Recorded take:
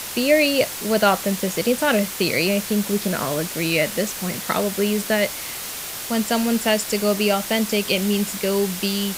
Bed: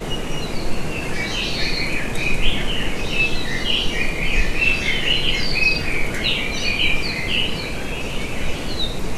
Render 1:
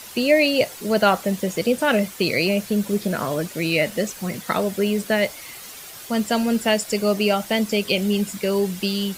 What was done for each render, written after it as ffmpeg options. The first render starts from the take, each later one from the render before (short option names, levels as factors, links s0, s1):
-af "afftdn=nr=10:nf=-31"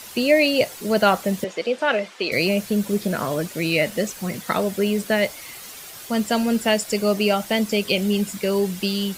-filter_complex "[0:a]asettb=1/sr,asplit=3[s0][s1][s2];[s0]atrim=end=1.444[s3];[s1]atrim=start=1.44:end=2.32,asetpts=PTS-STARTPTS,afade=t=in:d=0.004:c=qsin,afade=t=out:st=0.876:d=0.004:c=qsin,highpass=410,lowpass=4200[s4];[s2]atrim=start=2.316[s5];[s3][s4]acrossfade=d=0.004:c1=hsin:c2=qsin[s6];[s6][s5]acrossfade=d=0.004:c1=qsin:c2=hsin"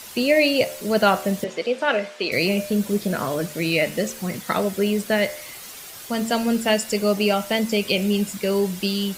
-af "bandreject=f=75.39:t=h:w=4,bandreject=f=150.78:t=h:w=4,bandreject=f=226.17:t=h:w=4,bandreject=f=301.56:t=h:w=4,bandreject=f=376.95:t=h:w=4,bandreject=f=452.34:t=h:w=4,bandreject=f=527.73:t=h:w=4,bandreject=f=603.12:t=h:w=4,bandreject=f=678.51:t=h:w=4,bandreject=f=753.9:t=h:w=4,bandreject=f=829.29:t=h:w=4,bandreject=f=904.68:t=h:w=4,bandreject=f=980.07:t=h:w=4,bandreject=f=1055.46:t=h:w=4,bandreject=f=1130.85:t=h:w=4,bandreject=f=1206.24:t=h:w=4,bandreject=f=1281.63:t=h:w=4,bandreject=f=1357.02:t=h:w=4,bandreject=f=1432.41:t=h:w=4,bandreject=f=1507.8:t=h:w=4,bandreject=f=1583.19:t=h:w=4,bandreject=f=1658.58:t=h:w=4,bandreject=f=1733.97:t=h:w=4,bandreject=f=1809.36:t=h:w=4,bandreject=f=1884.75:t=h:w=4,bandreject=f=1960.14:t=h:w=4,bandreject=f=2035.53:t=h:w=4,bandreject=f=2110.92:t=h:w=4,bandreject=f=2186.31:t=h:w=4,bandreject=f=2261.7:t=h:w=4,bandreject=f=2337.09:t=h:w=4,bandreject=f=2412.48:t=h:w=4,bandreject=f=2487.87:t=h:w=4,bandreject=f=2563.26:t=h:w=4,bandreject=f=2638.65:t=h:w=4,bandreject=f=2714.04:t=h:w=4,bandreject=f=2789.43:t=h:w=4,bandreject=f=2864.82:t=h:w=4,bandreject=f=2940.21:t=h:w=4"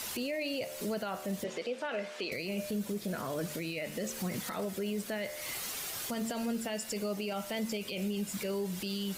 -af "acompressor=threshold=0.0316:ratio=6,alimiter=level_in=1.41:limit=0.0631:level=0:latency=1:release=13,volume=0.708"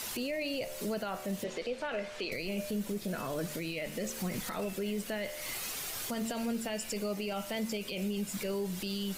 -filter_complex "[1:a]volume=0.0188[s0];[0:a][s0]amix=inputs=2:normalize=0"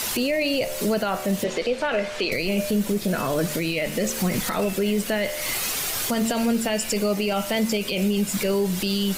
-af "volume=3.98"